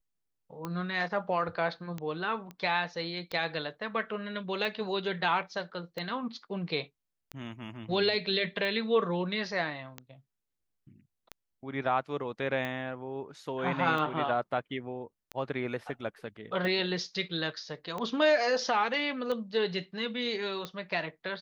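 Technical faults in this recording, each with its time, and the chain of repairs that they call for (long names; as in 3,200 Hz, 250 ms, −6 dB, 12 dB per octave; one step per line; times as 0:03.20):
scratch tick 45 rpm −22 dBFS
0:02.51: click −29 dBFS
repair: click removal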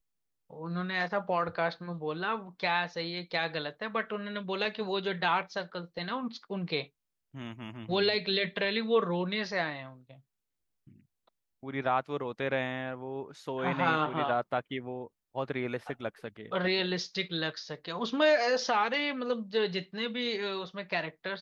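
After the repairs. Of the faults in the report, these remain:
none of them is left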